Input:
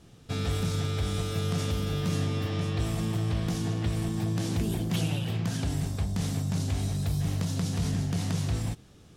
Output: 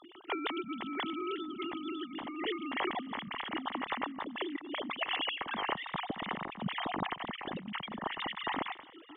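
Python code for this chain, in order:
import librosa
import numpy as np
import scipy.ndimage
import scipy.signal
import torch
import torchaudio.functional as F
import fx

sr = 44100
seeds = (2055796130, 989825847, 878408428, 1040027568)

p1 = fx.sine_speech(x, sr)
p2 = fx.low_shelf(p1, sr, hz=330.0, db=-9.5)
p3 = p2 + 0.45 * np.pad(p2, (int(1.0 * sr / 1000.0), 0))[:len(p2)]
p4 = fx.over_compress(p3, sr, threshold_db=-36.0, ratio=-0.5)
y = p4 + fx.echo_single(p4, sr, ms=631, db=-23.0, dry=0)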